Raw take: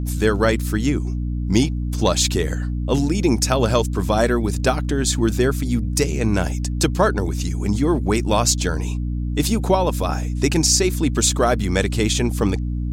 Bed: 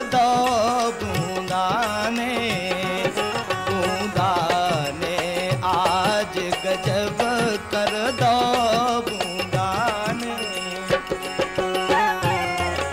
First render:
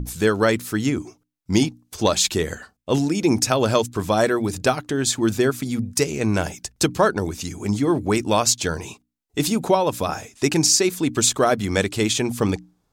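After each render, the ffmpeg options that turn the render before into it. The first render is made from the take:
-af "bandreject=f=60:t=h:w=6,bandreject=f=120:t=h:w=6,bandreject=f=180:t=h:w=6,bandreject=f=240:t=h:w=6,bandreject=f=300:t=h:w=6"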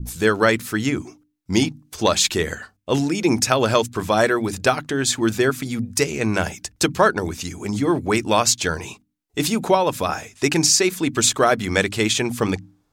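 -af "bandreject=f=50:t=h:w=6,bandreject=f=100:t=h:w=6,bandreject=f=150:t=h:w=6,bandreject=f=200:t=h:w=6,bandreject=f=250:t=h:w=6,bandreject=f=300:t=h:w=6,adynamicequalizer=threshold=0.0178:dfrequency=1900:dqfactor=0.76:tfrequency=1900:tqfactor=0.76:attack=5:release=100:ratio=0.375:range=2.5:mode=boostabove:tftype=bell"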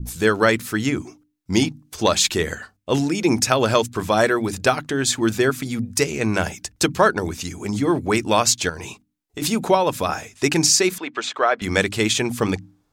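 -filter_complex "[0:a]asettb=1/sr,asplit=3[s0][s1][s2];[s0]atrim=end=8.694[s3];[s1]atrim=start=8.69:end=9.42,asetpts=PTS-STARTPTS,afade=t=in:d=0.004:c=qsin,afade=t=out:st=0.726:d=0.004:c=qsin,acompressor=threshold=0.0447:ratio=6:attack=3.2:release=140:knee=1:detection=peak[s4];[s2]atrim=start=9.416[s5];[s3][s4]acrossfade=d=0.004:c1=hsin:c2=qsin[s6];[s6][s5]acrossfade=d=0.004:c1=qsin:c2=hsin,asettb=1/sr,asplit=3[s7][s8][s9];[s7]atrim=end=10.984[s10];[s8]atrim=start=10.98:end=11.62,asetpts=PTS-STARTPTS,afade=t=in:d=0.004:c=qsin,afade=t=out:st=0.636:d=0.004:c=qsin,highpass=560,lowpass=2800[s11];[s9]atrim=start=11.616[s12];[s10][s11]acrossfade=d=0.004:c1=hsin:c2=qsin[s13];[s13][s12]acrossfade=d=0.004:c1=qsin:c2=hsin"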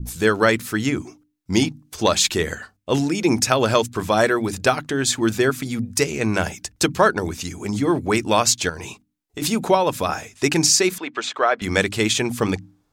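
-af anull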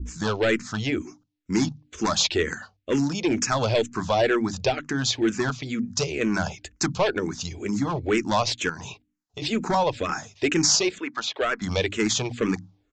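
-filter_complex "[0:a]aresample=16000,volume=5.62,asoftclip=hard,volume=0.178,aresample=44100,asplit=2[s0][s1];[s1]afreqshift=-2.1[s2];[s0][s2]amix=inputs=2:normalize=1"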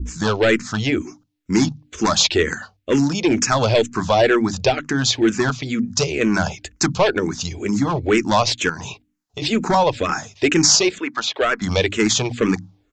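-af "volume=2"

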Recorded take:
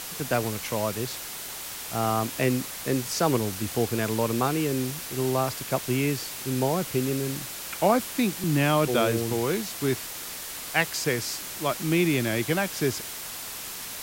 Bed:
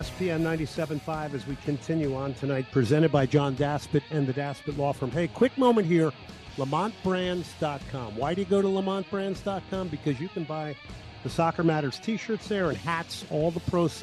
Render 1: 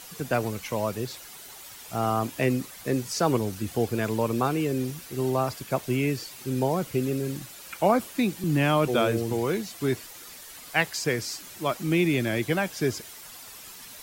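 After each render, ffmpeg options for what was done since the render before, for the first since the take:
-af "afftdn=nr=10:nf=-37"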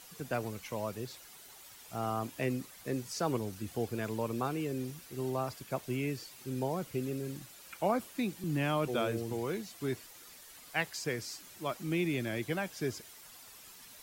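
-af "volume=0.355"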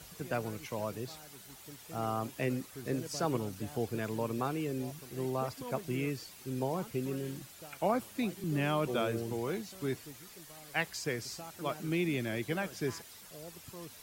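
-filter_complex "[1:a]volume=0.0708[s0];[0:a][s0]amix=inputs=2:normalize=0"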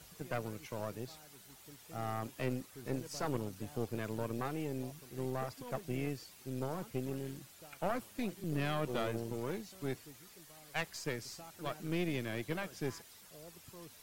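-af "aeval=exprs='(tanh(20*val(0)+0.8)-tanh(0.8))/20':c=same"

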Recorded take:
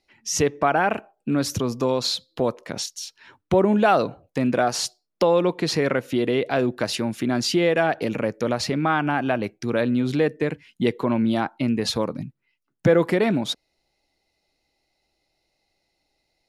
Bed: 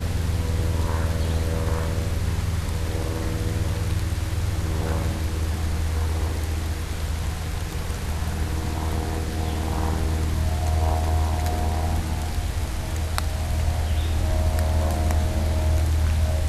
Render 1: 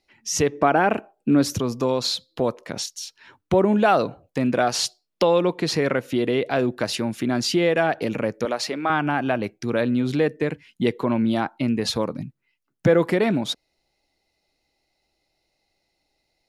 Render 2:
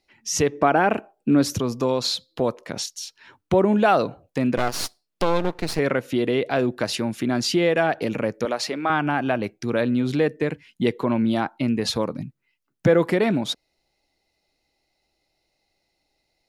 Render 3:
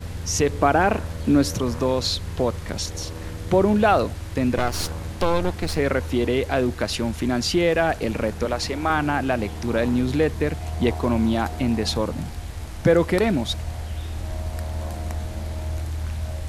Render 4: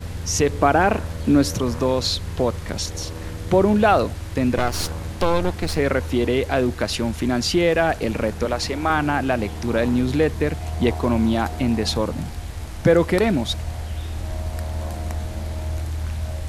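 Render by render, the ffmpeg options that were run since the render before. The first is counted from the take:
-filter_complex "[0:a]asettb=1/sr,asplit=3[s0][s1][s2];[s0]atrim=end=0.524[s3];[s1]atrim=start=0.52:end=1.53,asetpts=PTS-STARTPTS,afade=t=in:d=0.004:c=qsin,afade=t=out:st=1.006:d=0.004:c=qsin,equalizer=f=310:w=0.85:g=5.5[s4];[s2]atrim=start=1.526[s5];[s3][s4]acrossfade=d=0.004:c1=hsin:c2=qsin[s6];[s6][s5]acrossfade=d=0.004:c1=qsin:c2=hsin,asettb=1/sr,asplit=3[s7][s8][s9];[s7]atrim=end=4.604[s10];[s8]atrim=start=4.6:end=5.38,asetpts=PTS-STARTPTS,afade=t=in:d=0.004:c=qsin,afade=t=out:st=0.776:d=0.004:c=qsin,equalizer=f=3200:t=o:w=1.2:g=5[s11];[s9]atrim=start=5.376[s12];[s10][s11]acrossfade=d=0.004:c1=hsin:c2=qsin[s13];[s13][s12]acrossfade=d=0.004:c1=qsin:c2=hsin,asettb=1/sr,asplit=3[s14][s15][s16];[s14]atrim=end=8.454[s17];[s15]atrim=start=8.45:end=8.9,asetpts=PTS-STARTPTS,afade=t=in:d=0.004:c=qsin,afade=t=out:st=0.446:d=0.004:c=qsin,highpass=360[s18];[s16]atrim=start=8.896[s19];[s17][s18]acrossfade=d=0.004:c1=hsin:c2=qsin[s20];[s20][s19]acrossfade=d=0.004:c1=qsin:c2=hsin"
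-filter_complex "[0:a]asettb=1/sr,asplit=3[s0][s1][s2];[s0]atrim=end=4.574[s3];[s1]atrim=start=4.57:end=5.79,asetpts=PTS-STARTPTS,afade=t=in:d=0.004:c=qsin,afade=t=out:st=1.216:d=0.004:c=qsin,aeval=exprs='max(val(0),0)':c=same[s4];[s2]atrim=start=5.786[s5];[s3][s4]acrossfade=d=0.004:c1=hsin:c2=qsin[s6];[s6][s5]acrossfade=d=0.004:c1=qsin:c2=hsin"
-filter_complex "[1:a]volume=0.447[s0];[0:a][s0]amix=inputs=2:normalize=0"
-af "volume=1.19"

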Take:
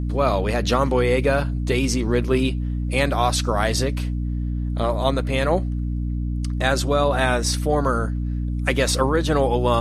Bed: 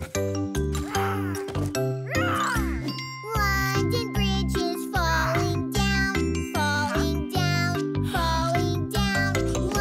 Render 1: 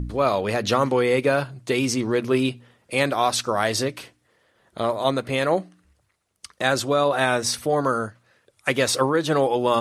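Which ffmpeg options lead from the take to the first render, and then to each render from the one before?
-af "bandreject=f=60:t=h:w=4,bandreject=f=120:t=h:w=4,bandreject=f=180:t=h:w=4,bandreject=f=240:t=h:w=4,bandreject=f=300:t=h:w=4"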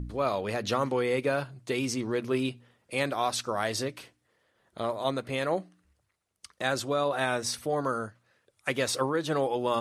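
-af "volume=0.422"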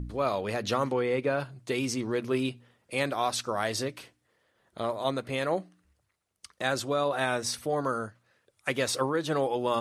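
-filter_complex "[0:a]asettb=1/sr,asplit=3[s0][s1][s2];[s0]atrim=end=0.934[s3];[s1]atrim=start=0.93:end=1.4,asetpts=PTS-STARTPTS,afade=t=in:d=0.004:c=qsin,afade=t=out:st=0.466:d=0.004:c=qsin,lowpass=f=2800:p=1[s4];[s2]atrim=start=1.396[s5];[s3][s4]acrossfade=d=0.004:c1=hsin:c2=qsin[s6];[s6][s5]acrossfade=d=0.004:c1=qsin:c2=hsin"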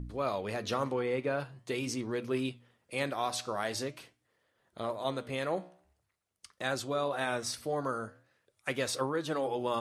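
-af "flanger=delay=7:depth=8.6:regen=-83:speed=0.45:shape=sinusoidal"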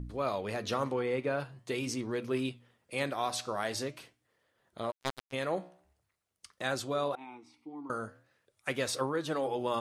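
-filter_complex "[0:a]asplit=3[s0][s1][s2];[s0]afade=t=out:st=4.9:d=0.02[s3];[s1]acrusher=bits=3:mix=0:aa=0.5,afade=t=in:st=4.9:d=0.02,afade=t=out:st=5.32:d=0.02[s4];[s2]afade=t=in:st=5.32:d=0.02[s5];[s3][s4][s5]amix=inputs=3:normalize=0,asettb=1/sr,asplit=3[s6][s7][s8];[s6]atrim=end=7.154[s9];[s7]atrim=start=7.15:end=7.9,asetpts=PTS-STARTPTS,afade=t=in:d=0.004:c=qsin,afade=t=out:st=0.746:d=0.004:c=qsin,asplit=3[s10][s11][s12];[s10]bandpass=f=300:t=q:w=8,volume=1[s13];[s11]bandpass=f=870:t=q:w=8,volume=0.501[s14];[s12]bandpass=f=2240:t=q:w=8,volume=0.355[s15];[s13][s14][s15]amix=inputs=3:normalize=0[s16];[s8]atrim=start=7.896[s17];[s9][s16]acrossfade=d=0.004:c1=hsin:c2=qsin[s18];[s18][s17]acrossfade=d=0.004:c1=qsin:c2=hsin"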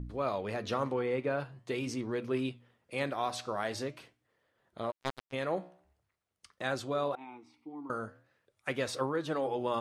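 -af "highshelf=f=4900:g=-9"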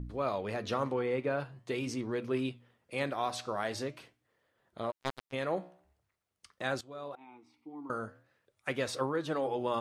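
-filter_complex "[0:a]asplit=2[s0][s1];[s0]atrim=end=6.81,asetpts=PTS-STARTPTS,afade=t=out:st=6.806:d=0.004:c=hsin:silence=0.133352[s2];[s1]atrim=start=6.81,asetpts=PTS-STARTPTS,afade=t=in:d=1.12:silence=0.133352[s3];[s2][s3]concat=n=2:v=0:a=1"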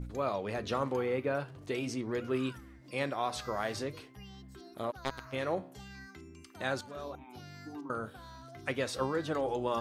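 -filter_complex "[1:a]volume=0.0501[s0];[0:a][s0]amix=inputs=2:normalize=0"

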